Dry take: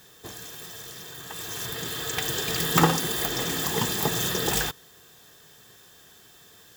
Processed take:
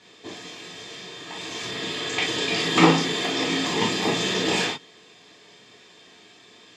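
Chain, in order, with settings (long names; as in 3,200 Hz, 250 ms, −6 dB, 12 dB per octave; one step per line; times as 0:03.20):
loudspeaker in its box 180–6,300 Hz, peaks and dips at 270 Hz +6 dB, 1,500 Hz −8 dB, 2,300 Hz +9 dB, 5,800 Hz −5 dB
reverb whose tail is shaped and stops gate 80 ms flat, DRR −4 dB
level −1 dB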